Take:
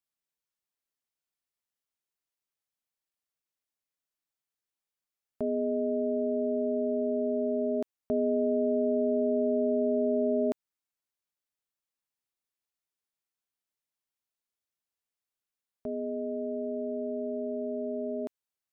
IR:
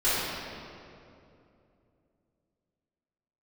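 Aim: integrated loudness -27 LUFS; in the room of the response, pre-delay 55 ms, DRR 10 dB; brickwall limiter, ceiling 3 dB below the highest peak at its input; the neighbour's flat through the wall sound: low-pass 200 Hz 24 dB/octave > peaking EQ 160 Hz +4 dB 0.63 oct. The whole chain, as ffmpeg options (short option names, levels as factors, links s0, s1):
-filter_complex "[0:a]alimiter=limit=0.0794:level=0:latency=1,asplit=2[s0][s1];[1:a]atrim=start_sample=2205,adelay=55[s2];[s1][s2]afir=irnorm=-1:irlink=0,volume=0.0596[s3];[s0][s3]amix=inputs=2:normalize=0,lowpass=f=200:w=0.5412,lowpass=f=200:w=1.3066,equalizer=f=160:t=o:w=0.63:g=4,volume=7.08"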